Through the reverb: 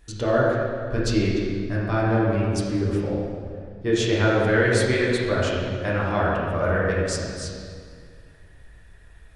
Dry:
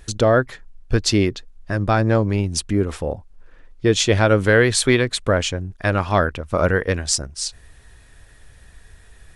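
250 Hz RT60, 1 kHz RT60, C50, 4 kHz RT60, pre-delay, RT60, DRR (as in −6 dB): 2.5 s, 2.1 s, −1.5 dB, 1.6 s, 5 ms, 2.1 s, −7.0 dB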